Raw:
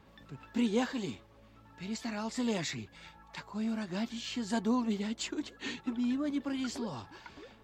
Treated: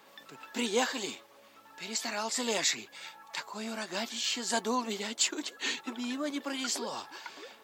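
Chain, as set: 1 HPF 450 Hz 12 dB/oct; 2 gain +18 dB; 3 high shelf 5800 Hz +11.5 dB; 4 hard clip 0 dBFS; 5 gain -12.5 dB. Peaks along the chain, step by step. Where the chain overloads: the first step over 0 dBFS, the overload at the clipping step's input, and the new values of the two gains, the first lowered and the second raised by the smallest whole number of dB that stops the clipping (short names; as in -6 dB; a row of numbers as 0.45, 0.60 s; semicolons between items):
-23.0, -5.0, -1.5, -1.5, -14.0 dBFS; no overload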